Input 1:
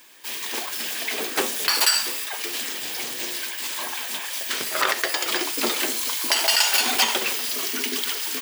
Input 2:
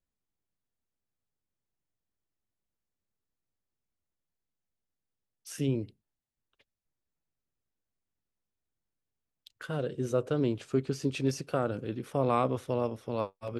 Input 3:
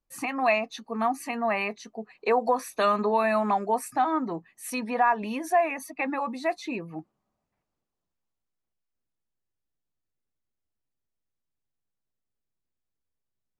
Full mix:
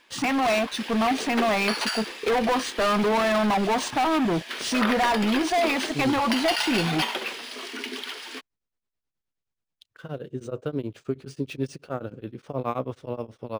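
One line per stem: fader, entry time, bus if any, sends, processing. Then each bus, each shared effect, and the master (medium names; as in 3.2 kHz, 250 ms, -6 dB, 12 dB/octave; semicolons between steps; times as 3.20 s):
-4.0 dB, 0.00 s, no send, low-pass 4.5 kHz 12 dB/octave
+1.0 dB, 0.35 s, no send, tremolo of two beating tones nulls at 9.4 Hz
-7.5 dB, 0.00 s, no send, bass shelf 190 Hz +8.5 dB; waveshaping leveller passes 5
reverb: none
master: decimation joined by straight lines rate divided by 3×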